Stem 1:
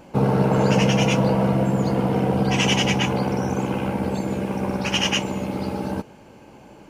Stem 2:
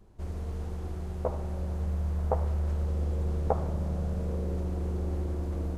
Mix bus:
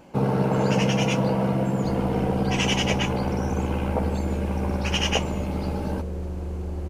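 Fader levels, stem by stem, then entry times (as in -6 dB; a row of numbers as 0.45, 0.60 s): -3.5, +0.5 dB; 0.00, 1.65 s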